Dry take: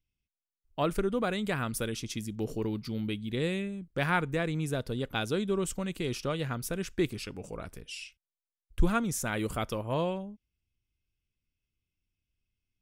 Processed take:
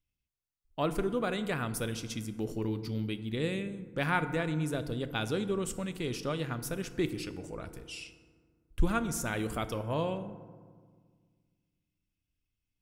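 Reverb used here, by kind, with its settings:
feedback delay network reverb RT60 1.7 s, low-frequency decay 1.45×, high-frequency decay 0.45×, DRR 10.5 dB
level −2 dB

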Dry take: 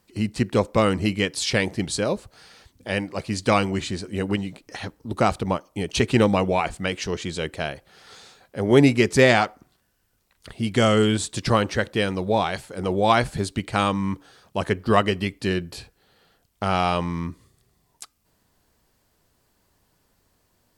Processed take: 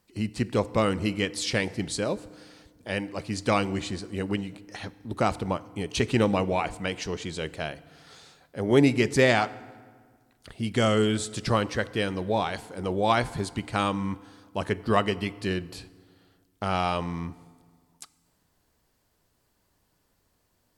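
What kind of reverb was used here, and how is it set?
feedback delay network reverb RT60 1.7 s, low-frequency decay 1.25×, high-frequency decay 0.65×, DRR 17 dB
level −4.5 dB

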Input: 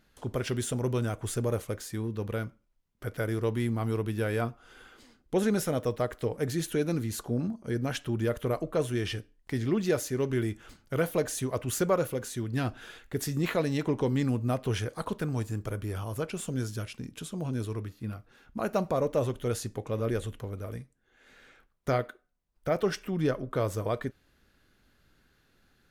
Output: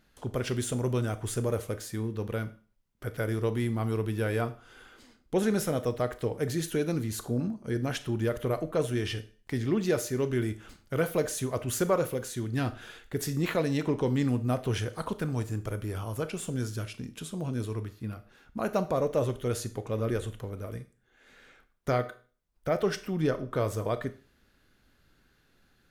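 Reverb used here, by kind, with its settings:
four-comb reverb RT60 0.4 s, combs from 25 ms, DRR 12.5 dB

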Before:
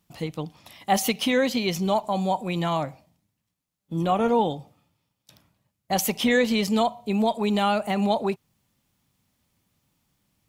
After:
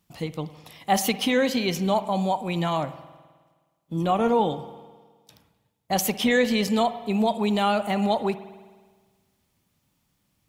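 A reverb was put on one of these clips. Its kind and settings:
spring reverb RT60 1.5 s, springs 52 ms, chirp 55 ms, DRR 13.5 dB

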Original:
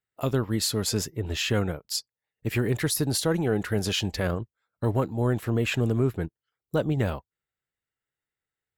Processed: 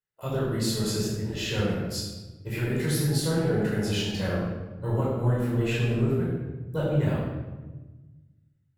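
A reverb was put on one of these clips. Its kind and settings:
rectangular room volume 760 cubic metres, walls mixed, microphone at 4.9 metres
level −12 dB

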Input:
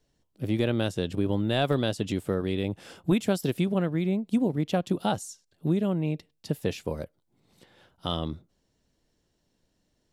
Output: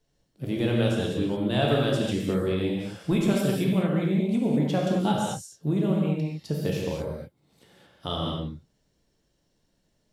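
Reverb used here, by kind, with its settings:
reverb whose tail is shaped and stops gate 250 ms flat, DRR −2.5 dB
level −2.5 dB

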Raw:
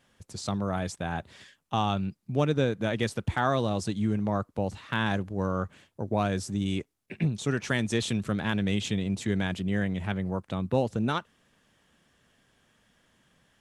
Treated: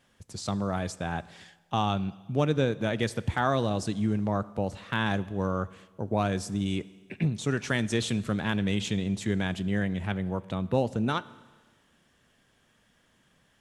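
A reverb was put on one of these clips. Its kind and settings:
four-comb reverb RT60 1.4 s, combs from 26 ms, DRR 18 dB

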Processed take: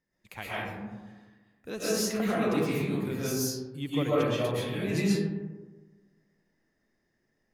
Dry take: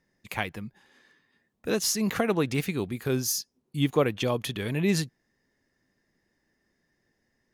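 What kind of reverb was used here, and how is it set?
comb and all-pass reverb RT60 1.3 s, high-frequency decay 0.35×, pre-delay 90 ms, DRR −9 dB
level −11 dB

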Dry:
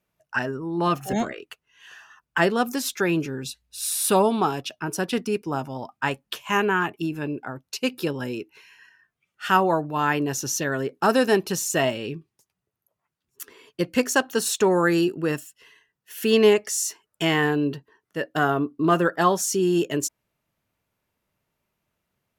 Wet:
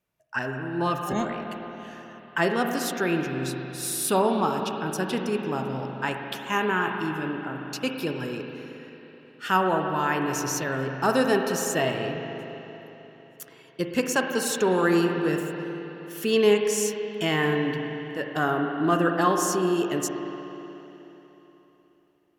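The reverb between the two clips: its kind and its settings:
spring reverb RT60 3.6 s, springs 38/53 ms, chirp 75 ms, DRR 3 dB
level −3.5 dB

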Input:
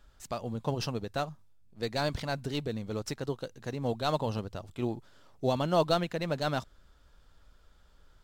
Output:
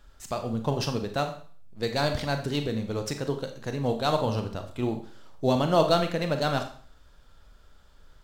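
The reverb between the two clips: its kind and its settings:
four-comb reverb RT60 0.47 s, combs from 28 ms, DRR 6 dB
level +4 dB

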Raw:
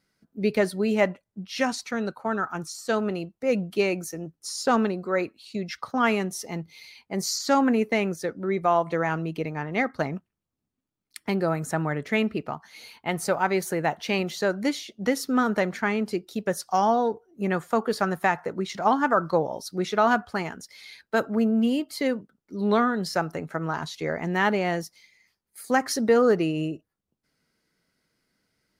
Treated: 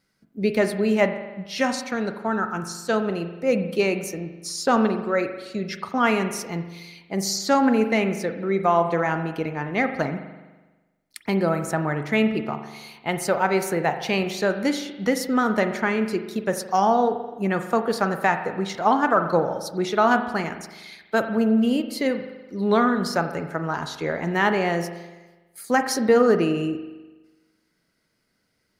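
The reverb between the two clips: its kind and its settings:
spring reverb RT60 1.2 s, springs 41 ms, chirp 50 ms, DRR 8 dB
level +2 dB

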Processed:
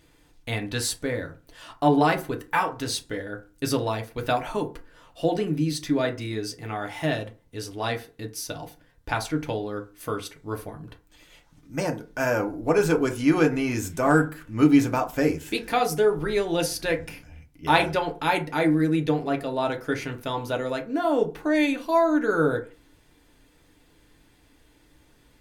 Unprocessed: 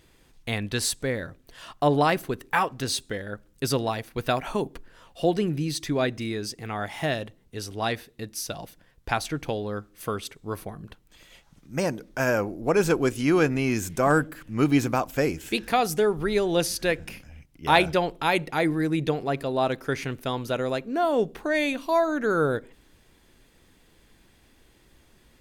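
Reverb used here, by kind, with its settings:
feedback delay network reverb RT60 0.32 s, low-frequency decay 0.9×, high-frequency decay 0.5×, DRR 2.5 dB
level −2 dB

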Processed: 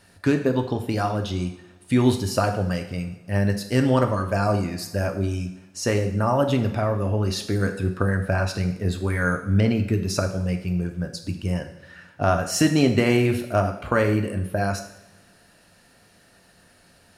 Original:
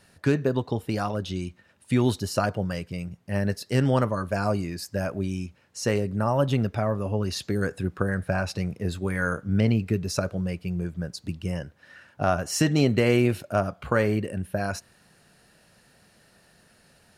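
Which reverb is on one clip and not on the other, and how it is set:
coupled-rooms reverb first 0.72 s, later 2 s, DRR 5 dB
level +2 dB

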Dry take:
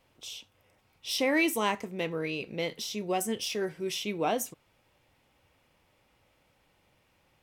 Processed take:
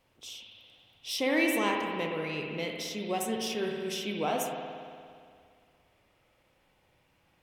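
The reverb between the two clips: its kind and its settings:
spring reverb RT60 2.2 s, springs 58 ms, chirp 70 ms, DRR 1 dB
level −2.5 dB

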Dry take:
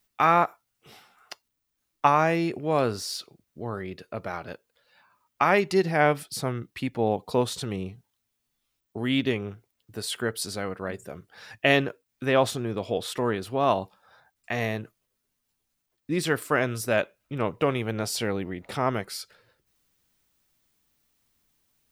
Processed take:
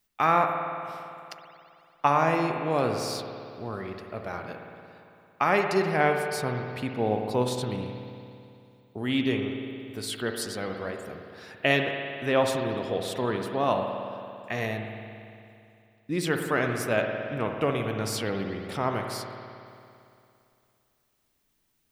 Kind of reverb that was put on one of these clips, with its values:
spring reverb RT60 2.6 s, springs 56 ms, chirp 65 ms, DRR 3.5 dB
level −2.5 dB

